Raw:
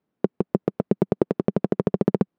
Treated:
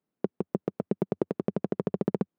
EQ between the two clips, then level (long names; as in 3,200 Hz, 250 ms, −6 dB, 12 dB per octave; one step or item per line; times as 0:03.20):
parametric band 92 Hz −12 dB 0.26 octaves
−7.0 dB